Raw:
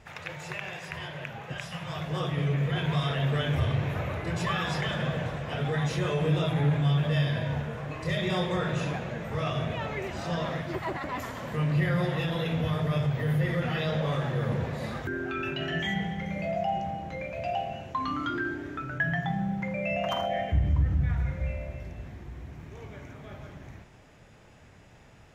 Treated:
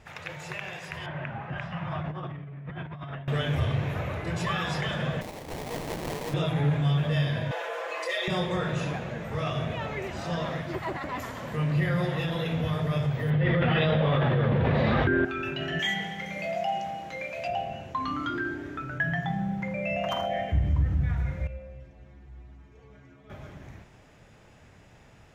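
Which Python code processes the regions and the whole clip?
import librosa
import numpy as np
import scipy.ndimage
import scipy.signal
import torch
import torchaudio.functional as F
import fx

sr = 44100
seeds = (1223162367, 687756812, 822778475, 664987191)

y = fx.chain(x, sr, fx.lowpass(hz=1700.0, slope=12),
    fx.peak_eq(hz=470.0, db=-12.5, octaves=0.31),
    fx.over_compress(threshold_db=-36.0, ratio=-1.0), at=(1.06, 3.28))
y = fx.chain(y, sr, fx.highpass(hz=870.0, slope=6),
    fx.high_shelf(hz=3900.0, db=10.0),
    fx.sample_hold(seeds[0], rate_hz=1400.0, jitter_pct=20), at=(5.21, 6.34))
y = fx.chain(y, sr, fx.steep_highpass(hz=440.0, slope=36),
    fx.comb(ms=5.9, depth=0.78),
    fx.env_flatten(amount_pct=50), at=(7.51, 8.28))
y = fx.chain(y, sr, fx.cheby1_lowpass(hz=3400.0, order=3),
    fx.env_flatten(amount_pct=100), at=(13.3, 15.25))
y = fx.chain(y, sr, fx.highpass(hz=340.0, slope=6),
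    fx.high_shelf(hz=2000.0, db=8.0), at=(15.79, 17.48))
y = fx.chain(y, sr, fx.air_absorb(metres=51.0),
    fx.stiff_resonator(f0_hz=64.0, decay_s=0.44, stiffness=0.008), at=(21.47, 23.3))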